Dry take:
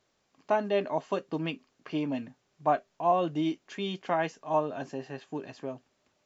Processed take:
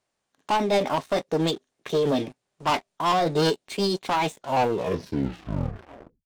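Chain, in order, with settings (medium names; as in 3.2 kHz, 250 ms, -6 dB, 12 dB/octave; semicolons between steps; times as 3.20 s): tape stop on the ending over 2.01 s; waveshaping leveller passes 3; formant shift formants +5 st; dynamic bell 1.3 kHz, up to -5 dB, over -47 dBFS, Q 0.93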